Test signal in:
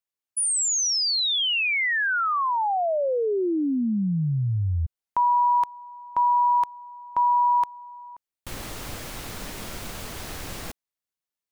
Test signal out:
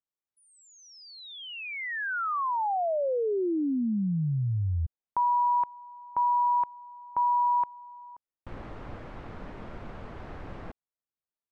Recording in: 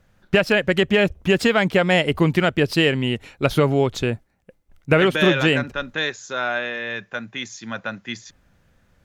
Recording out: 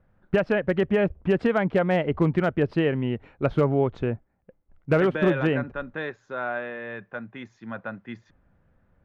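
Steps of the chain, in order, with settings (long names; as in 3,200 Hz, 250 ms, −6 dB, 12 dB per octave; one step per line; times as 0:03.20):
low-pass filter 1,400 Hz 12 dB per octave
gain into a clipping stage and back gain 8.5 dB
level −3.5 dB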